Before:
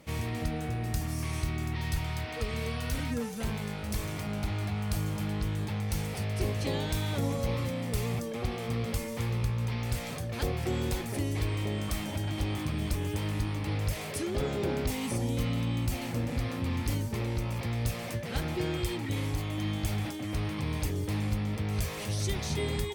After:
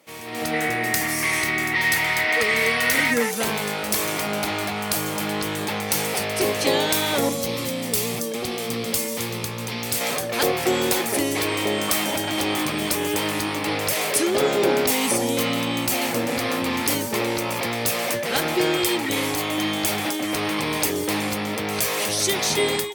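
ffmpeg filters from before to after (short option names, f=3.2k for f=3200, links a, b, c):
-filter_complex "[0:a]asettb=1/sr,asplit=3[a][b][c];[a]atrim=end=0.534[d];[b]atrim=start=0.53:end=3.31,asetpts=PTS-STARTPTS,afade=t=in:d=0.004:c=qsin,afade=t=out:st=2.776:d=0.004:c=qsin,equalizer=f=2k:w=4:g=13.5[e];[c]atrim=start=3.306[f];[d][e]acrossfade=d=0.004:c1=hsin:c2=qsin[g];[g][f]acrossfade=d=0.004:c1=qsin:c2=hsin,asettb=1/sr,asplit=3[h][i][j];[h]atrim=end=7.294[k];[i]atrim=start=7.29:end=10.01,asetpts=PTS-STARTPTS,afade=t=in:d=0.004:c=qsin,afade=t=out:st=2.716:d=0.004:c=qsin,acrossover=split=360|3000[l][m][n];[m]acompressor=threshold=-50dB:ratio=2.5:attack=3.2:release=140:knee=2.83:detection=peak[o];[l][o][n]amix=inputs=3:normalize=0[p];[j]atrim=start=10.006[q];[k][p]acrossfade=d=0.004:c1=hsin:c2=qsin[r];[r][q]acrossfade=d=0.004:c1=qsin:c2=hsin,dynaudnorm=f=250:g=3:m=15.5dB,highpass=350,highshelf=f=10k:g=6.5"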